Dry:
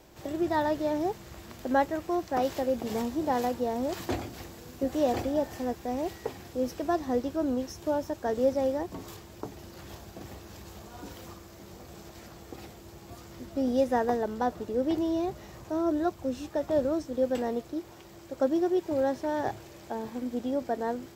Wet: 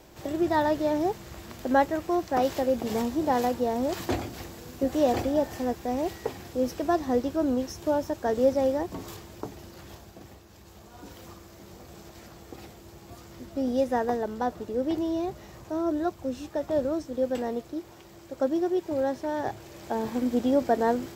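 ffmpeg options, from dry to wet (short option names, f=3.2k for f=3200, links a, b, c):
-af "volume=17dB,afade=t=out:st=9.23:d=1.25:silence=0.316228,afade=t=in:st=10.48:d=0.96:silence=0.446684,afade=t=in:st=19.55:d=0.57:silence=0.446684"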